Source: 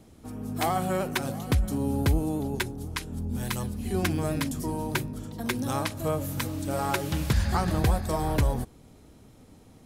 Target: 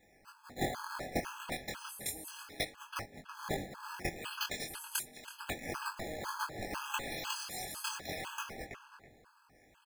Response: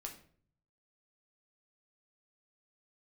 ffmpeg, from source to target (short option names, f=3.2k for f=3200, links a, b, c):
-filter_complex "[0:a]aderivative,acrusher=samples=9:mix=1:aa=0.000001:lfo=1:lforange=14.4:lforate=0.36,flanger=delay=19.5:depth=4.8:speed=0.32,asplit=2[a][b];[b]adelay=327,lowpass=f=2.8k:p=1,volume=-8dB,asplit=2[c][d];[d]adelay=327,lowpass=f=2.8k:p=1,volume=0.27,asplit=2[e][f];[f]adelay=327,lowpass=f=2.8k:p=1,volume=0.27[g];[a][c][e][g]amix=inputs=4:normalize=0,afftfilt=real='re*gt(sin(2*PI*2*pts/sr)*(1-2*mod(floor(b*sr/1024/840),2)),0)':imag='im*gt(sin(2*PI*2*pts/sr)*(1-2*mod(floor(b*sr/1024/840),2)),0)':win_size=1024:overlap=0.75,volume=6.5dB"